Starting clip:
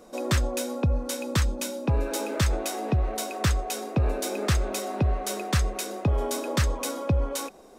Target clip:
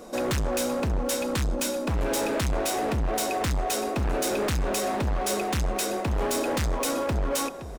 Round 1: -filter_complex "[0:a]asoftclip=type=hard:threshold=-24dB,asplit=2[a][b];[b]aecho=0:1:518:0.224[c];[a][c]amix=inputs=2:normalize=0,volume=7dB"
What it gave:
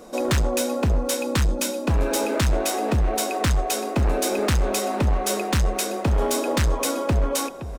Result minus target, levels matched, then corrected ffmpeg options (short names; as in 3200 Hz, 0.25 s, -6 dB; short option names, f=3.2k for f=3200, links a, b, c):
hard clip: distortion -5 dB
-filter_complex "[0:a]asoftclip=type=hard:threshold=-31dB,asplit=2[a][b];[b]aecho=0:1:518:0.224[c];[a][c]amix=inputs=2:normalize=0,volume=7dB"